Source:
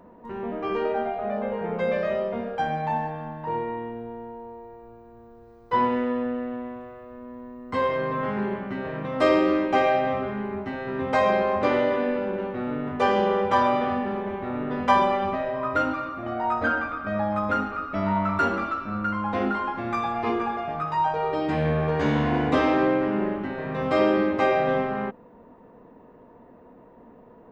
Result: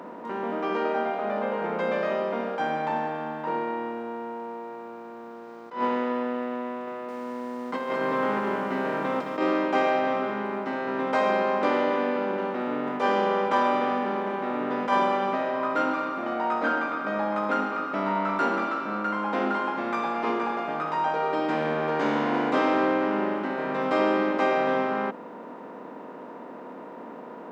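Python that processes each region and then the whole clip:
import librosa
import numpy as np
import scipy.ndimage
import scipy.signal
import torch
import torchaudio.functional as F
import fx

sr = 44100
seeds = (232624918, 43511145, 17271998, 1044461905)

y = fx.chain(x, sr, fx.over_compress(threshold_db=-27.0, ratio=-0.5),
    fx.echo_crushed(ms=215, feedback_pct=35, bits=9, wet_db=-9.0), at=(6.87, 9.38))
y = fx.bin_compress(y, sr, power=0.6)
y = scipy.signal.sosfilt(scipy.signal.butter(4, 200.0, 'highpass', fs=sr, output='sos'), y)
y = fx.attack_slew(y, sr, db_per_s=160.0)
y = y * 10.0 ** (-4.5 / 20.0)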